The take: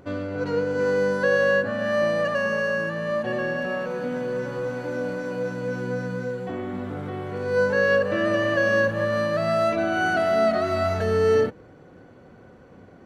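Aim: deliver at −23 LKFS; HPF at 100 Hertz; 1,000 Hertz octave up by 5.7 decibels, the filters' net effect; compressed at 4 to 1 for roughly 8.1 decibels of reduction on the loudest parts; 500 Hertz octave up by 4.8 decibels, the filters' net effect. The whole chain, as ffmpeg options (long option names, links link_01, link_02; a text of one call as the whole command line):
ffmpeg -i in.wav -af "highpass=100,equalizer=frequency=500:width_type=o:gain=3.5,equalizer=frequency=1000:width_type=o:gain=7,acompressor=threshold=-22dB:ratio=4,volume=2dB" out.wav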